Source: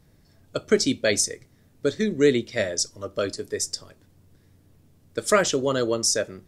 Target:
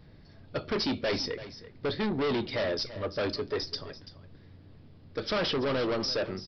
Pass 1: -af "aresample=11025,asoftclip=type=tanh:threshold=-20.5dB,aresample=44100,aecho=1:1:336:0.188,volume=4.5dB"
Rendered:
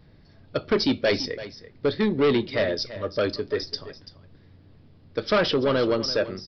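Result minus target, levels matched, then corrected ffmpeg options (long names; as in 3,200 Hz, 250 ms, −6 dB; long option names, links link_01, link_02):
soft clipping: distortion −6 dB
-af "aresample=11025,asoftclip=type=tanh:threshold=-31dB,aresample=44100,aecho=1:1:336:0.188,volume=4.5dB"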